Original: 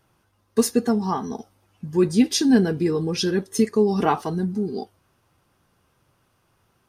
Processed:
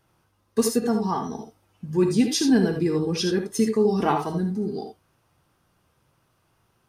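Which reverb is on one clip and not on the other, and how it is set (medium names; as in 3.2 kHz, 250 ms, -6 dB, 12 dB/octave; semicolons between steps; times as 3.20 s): gated-style reverb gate 100 ms rising, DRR 5 dB; trim -2.5 dB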